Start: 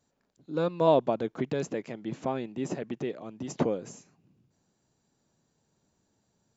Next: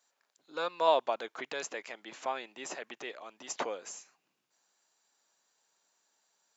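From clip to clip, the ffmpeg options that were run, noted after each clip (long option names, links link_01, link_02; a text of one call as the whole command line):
ffmpeg -i in.wav -af "highpass=1000,volume=4.5dB" out.wav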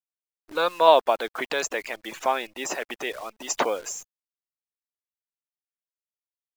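ffmpeg -i in.wav -af "afftfilt=real='re*gte(hypot(re,im),0.00398)':imag='im*gte(hypot(re,im),0.00398)':win_size=1024:overlap=0.75,dynaudnorm=framelen=120:gausssize=5:maxgain=11dB,acrusher=bits=8:dc=4:mix=0:aa=0.000001" out.wav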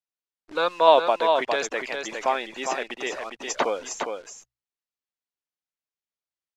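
ffmpeg -i in.wav -af "lowpass=6300,bandreject=frequency=60:width_type=h:width=6,bandreject=frequency=120:width_type=h:width=6,aecho=1:1:408:0.531" out.wav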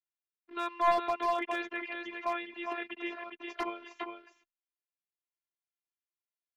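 ffmpeg -i in.wav -af "highpass=170,equalizer=frequency=270:width_type=q:width=4:gain=-5,equalizer=frequency=550:width_type=q:width=4:gain=-9,equalizer=frequency=790:width_type=q:width=4:gain=-7,equalizer=frequency=1500:width_type=q:width=4:gain=-3,lowpass=frequency=3000:width=0.5412,lowpass=frequency=3000:width=1.3066,afftfilt=real='hypot(re,im)*cos(PI*b)':imag='0':win_size=512:overlap=0.75,aeval=exprs='clip(val(0),-1,0.0944)':channel_layout=same,volume=-2dB" out.wav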